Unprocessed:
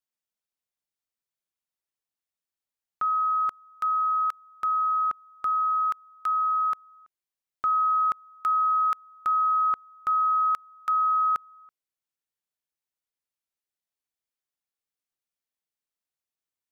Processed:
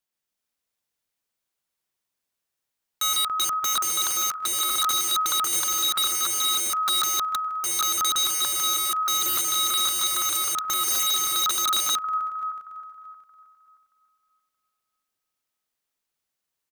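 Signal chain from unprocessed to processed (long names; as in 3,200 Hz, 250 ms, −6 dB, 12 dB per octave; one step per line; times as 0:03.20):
feedback delay that plays each chunk backwards 313 ms, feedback 46%, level −6 dB
on a send: bouncing-ball delay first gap 150 ms, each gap 0.9×, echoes 5
on the sum: wrap-around overflow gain 24.5 dB
level +5 dB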